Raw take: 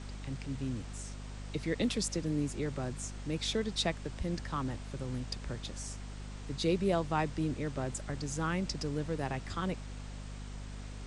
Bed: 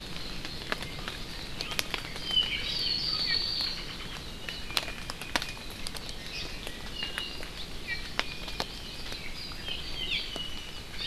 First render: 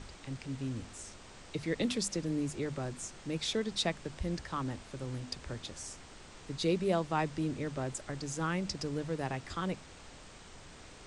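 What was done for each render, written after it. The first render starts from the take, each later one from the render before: hum notches 50/100/150/200/250 Hz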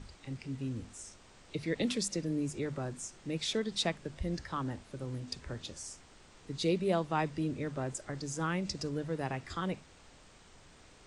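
noise print and reduce 6 dB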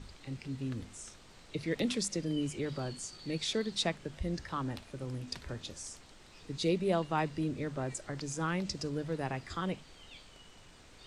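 add bed -22.5 dB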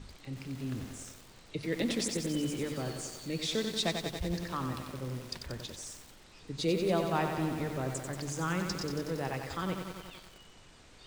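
spring tank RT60 2.6 s, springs 39 ms, chirp 65 ms, DRR 19.5 dB; bit-crushed delay 92 ms, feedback 80%, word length 8-bit, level -6 dB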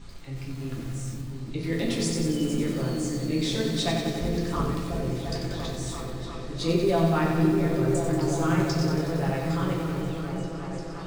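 delay with an opening low-pass 348 ms, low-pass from 200 Hz, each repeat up 1 oct, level 0 dB; simulated room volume 51 m³, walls mixed, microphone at 0.79 m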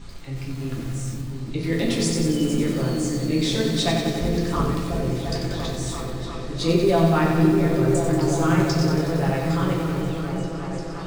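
trim +4.5 dB

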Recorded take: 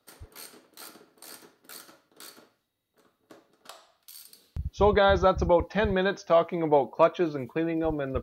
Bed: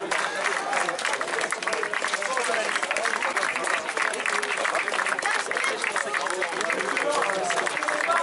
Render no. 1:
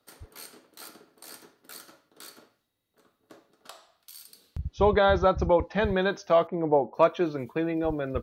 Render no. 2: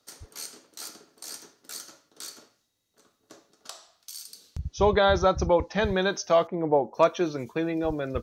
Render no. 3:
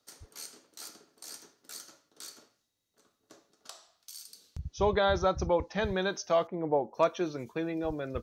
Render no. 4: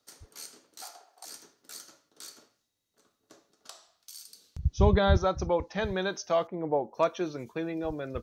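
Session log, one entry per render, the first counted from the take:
4.59–5.81 s: distance through air 71 m; 6.47–6.94 s: low-pass 1 kHz
peaking EQ 6.2 kHz +13.5 dB 0.97 oct
trim -5.5 dB
0.82–1.25 s: resonant high-pass 750 Hz, resonance Q 8.1; 4.63–5.17 s: tone controls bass +14 dB, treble +1 dB

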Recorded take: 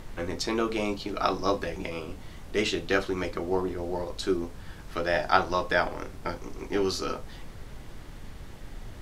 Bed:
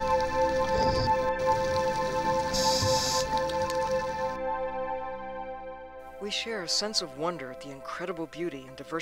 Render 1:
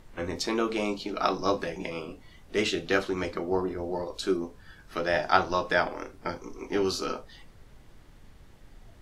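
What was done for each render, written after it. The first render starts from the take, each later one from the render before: noise print and reduce 10 dB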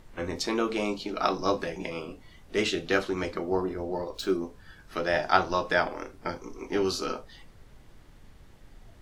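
3.83–4.32 s: decimation joined by straight lines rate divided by 2×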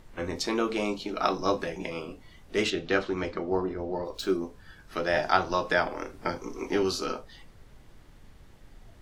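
0.95–1.89 s: band-stop 4.7 kHz, Q 13; 2.70–4.05 s: distance through air 92 m; 5.17–6.83 s: three bands compressed up and down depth 40%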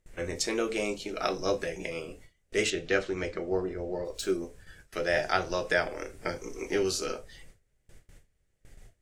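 gate with hold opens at -40 dBFS; graphic EQ 250/500/1000/2000/4000/8000 Hz -7/+4/-11/+4/-5/+9 dB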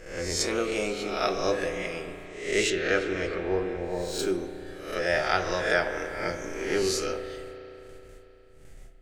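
reverse spectral sustain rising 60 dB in 0.62 s; spring tank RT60 3.5 s, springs 34 ms, chirp 60 ms, DRR 7.5 dB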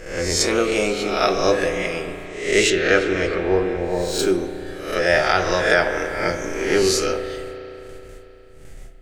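trim +8.5 dB; peak limiter -3 dBFS, peak gain reduction 3 dB

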